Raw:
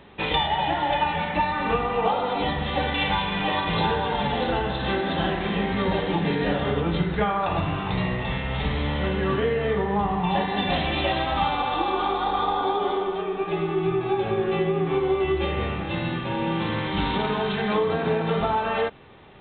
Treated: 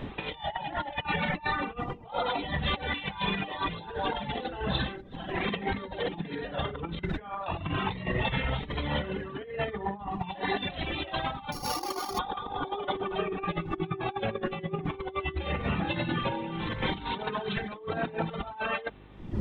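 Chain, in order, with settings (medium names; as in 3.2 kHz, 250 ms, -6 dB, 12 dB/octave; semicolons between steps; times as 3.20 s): 11.52–12.19 s: sorted samples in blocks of 8 samples; wind noise 260 Hz -36 dBFS; reverb removal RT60 1.9 s; mains buzz 50 Hz, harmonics 8, -58 dBFS; compressor with a negative ratio -32 dBFS, ratio -0.5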